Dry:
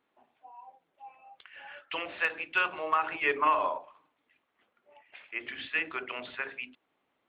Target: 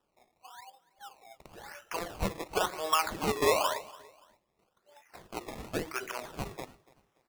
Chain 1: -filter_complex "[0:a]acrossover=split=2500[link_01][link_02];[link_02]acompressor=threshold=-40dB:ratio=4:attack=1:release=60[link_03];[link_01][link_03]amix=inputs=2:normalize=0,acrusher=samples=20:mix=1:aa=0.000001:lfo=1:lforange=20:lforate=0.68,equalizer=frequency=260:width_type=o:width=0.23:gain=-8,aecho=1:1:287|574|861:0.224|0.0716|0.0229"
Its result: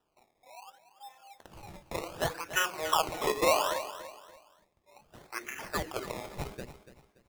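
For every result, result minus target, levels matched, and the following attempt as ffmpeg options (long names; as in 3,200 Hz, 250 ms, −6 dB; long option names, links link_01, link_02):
echo-to-direct +8.5 dB; sample-and-hold swept by an LFO: distortion +7 dB
-filter_complex "[0:a]acrossover=split=2500[link_01][link_02];[link_02]acompressor=threshold=-40dB:ratio=4:attack=1:release=60[link_03];[link_01][link_03]amix=inputs=2:normalize=0,acrusher=samples=20:mix=1:aa=0.000001:lfo=1:lforange=20:lforate=0.68,equalizer=frequency=260:width_type=o:width=0.23:gain=-8,aecho=1:1:287|574:0.0841|0.0269"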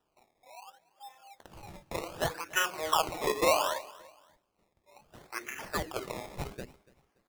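sample-and-hold swept by an LFO: distortion +7 dB
-filter_complex "[0:a]acrossover=split=2500[link_01][link_02];[link_02]acompressor=threshold=-40dB:ratio=4:attack=1:release=60[link_03];[link_01][link_03]amix=inputs=2:normalize=0,acrusher=samples=20:mix=1:aa=0.000001:lfo=1:lforange=20:lforate=0.95,equalizer=frequency=260:width_type=o:width=0.23:gain=-8,aecho=1:1:287|574:0.0841|0.0269"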